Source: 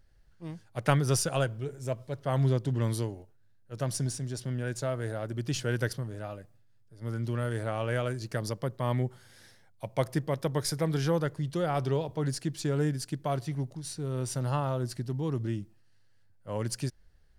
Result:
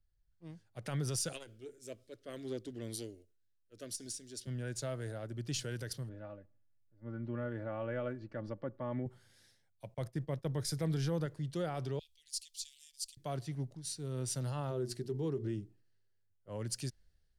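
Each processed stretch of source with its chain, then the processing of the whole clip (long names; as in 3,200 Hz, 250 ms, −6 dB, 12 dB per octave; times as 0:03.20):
0:01.32–0:04.47: phaser with its sweep stopped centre 350 Hz, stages 4 + saturating transformer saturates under 310 Hz
0:06.09–0:09.06: low-pass filter 1,800 Hz + comb filter 3.5 ms, depth 56%
0:09.94–0:11.26: downward expander −35 dBFS + low-shelf EQ 170 Hz +7 dB
0:11.99–0:13.17: inverse Chebyshev band-stop filter 110–1,100 Hz, stop band 50 dB + phaser with its sweep stopped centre 500 Hz, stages 4
0:14.70–0:16.49: parametric band 400 Hz +13 dB 0.33 octaves + mains-hum notches 60/120/180/240/300/360/420 Hz
whole clip: octave-band graphic EQ 1,000/4,000/8,000 Hz −4/+3/+3 dB; brickwall limiter −22.5 dBFS; multiband upward and downward expander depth 40%; level −6 dB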